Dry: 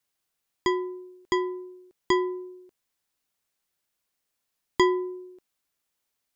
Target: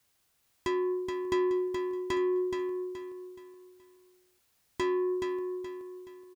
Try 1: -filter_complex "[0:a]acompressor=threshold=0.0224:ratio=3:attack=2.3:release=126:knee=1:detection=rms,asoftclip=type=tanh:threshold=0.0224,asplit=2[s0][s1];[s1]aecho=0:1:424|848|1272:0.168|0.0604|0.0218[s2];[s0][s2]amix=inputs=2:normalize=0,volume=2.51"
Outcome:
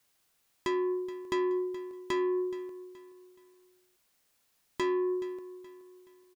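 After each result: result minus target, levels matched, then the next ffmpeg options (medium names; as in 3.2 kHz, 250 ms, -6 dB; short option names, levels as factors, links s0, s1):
echo-to-direct -10 dB; 125 Hz band -4.0 dB
-filter_complex "[0:a]acompressor=threshold=0.0224:ratio=3:attack=2.3:release=126:knee=1:detection=rms,asoftclip=type=tanh:threshold=0.0224,asplit=2[s0][s1];[s1]aecho=0:1:424|848|1272|1696:0.531|0.191|0.0688|0.0248[s2];[s0][s2]amix=inputs=2:normalize=0,volume=2.51"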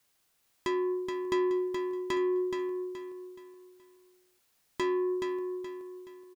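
125 Hz band -3.5 dB
-filter_complex "[0:a]acompressor=threshold=0.0224:ratio=3:attack=2.3:release=126:knee=1:detection=rms,equalizer=f=80:w=1:g=7.5,asoftclip=type=tanh:threshold=0.0224,asplit=2[s0][s1];[s1]aecho=0:1:424|848|1272|1696:0.531|0.191|0.0688|0.0248[s2];[s0][s2]amix=inputs=2:normalize=0,volume=2.51"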